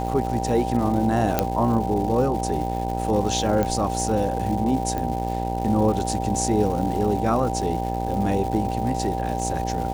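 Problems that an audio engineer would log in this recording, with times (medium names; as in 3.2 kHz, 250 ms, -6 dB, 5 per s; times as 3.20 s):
buzz 60 Hz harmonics 16 -28 dBFS
crackle 400 per s -31 dBFS
whine 780 Hz -29 dBFS
1.39 s: pop -4 dBFS
3.63 s: pop -12 dBFS
4.98 s: pop -15 dBFS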